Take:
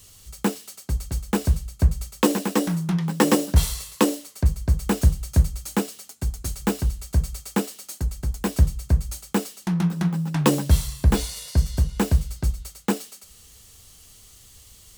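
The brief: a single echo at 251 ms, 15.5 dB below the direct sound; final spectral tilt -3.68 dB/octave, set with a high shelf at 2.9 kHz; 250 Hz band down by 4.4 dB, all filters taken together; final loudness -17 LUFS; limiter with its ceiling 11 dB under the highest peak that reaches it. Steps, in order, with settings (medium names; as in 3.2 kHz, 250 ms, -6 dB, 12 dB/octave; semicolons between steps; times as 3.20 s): peaking EQ 250 Hz -6.5 dB; treble shelf 2.9 kHz +6.5 dB; peak limiter -14 dBFS; delay 251 ms -15.5 dB; trim +10 dB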